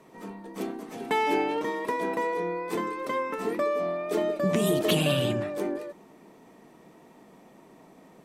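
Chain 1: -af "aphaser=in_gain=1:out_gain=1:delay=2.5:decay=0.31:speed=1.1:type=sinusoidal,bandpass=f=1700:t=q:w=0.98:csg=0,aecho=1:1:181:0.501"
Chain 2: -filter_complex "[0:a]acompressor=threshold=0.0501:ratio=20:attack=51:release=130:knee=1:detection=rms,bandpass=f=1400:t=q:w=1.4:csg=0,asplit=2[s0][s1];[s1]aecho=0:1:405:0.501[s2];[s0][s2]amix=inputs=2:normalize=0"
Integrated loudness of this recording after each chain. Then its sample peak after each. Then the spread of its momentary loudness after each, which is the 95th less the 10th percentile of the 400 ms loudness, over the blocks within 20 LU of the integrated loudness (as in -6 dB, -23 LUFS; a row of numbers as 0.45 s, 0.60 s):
-33.0 LUFS, -36.0 LUFS; -16.0 dBFS, -22.0 dBFS; 16 LU, 14 LU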